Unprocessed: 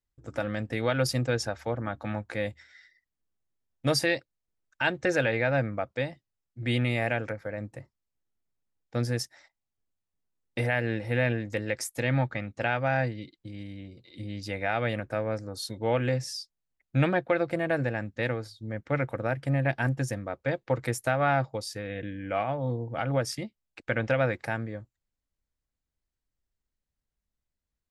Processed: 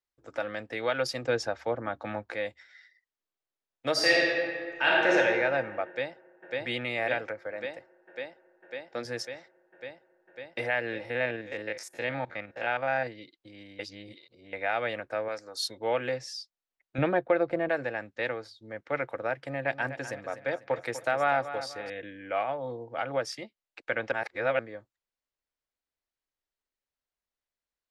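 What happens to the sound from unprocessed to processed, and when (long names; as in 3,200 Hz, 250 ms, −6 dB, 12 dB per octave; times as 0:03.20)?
0:01.24–0:02.35: low-shelf EQ 480 Hz +7 dB
0:03.92–0:05.13: thrown reverb, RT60 2 s, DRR −5.5 dB
0:05.87–0:06.60: delay throw 550 ms, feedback 85%, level −1 dB
0:07.51–0:09.05: parametric band 120 Hz −9.5 dB
0:11.05–0:13.07: spectrum averaged block by block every 50 ms
0:13.79–0:14.53: reverse
0:15.28–0:15.68: spectral tilt +3 dB per octave
0:16.98–0:17.69: spectral tilt −3 dB per octave
0:19.35–0:21.90: repeating echo 247 ms, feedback 39%, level −12 dB
0:24.12–0:24.59: reverse
whole clip: three-way crossover with the lows and the highs turned down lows −17 dB, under 340 Hz, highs −13 dB, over 6,200 Hz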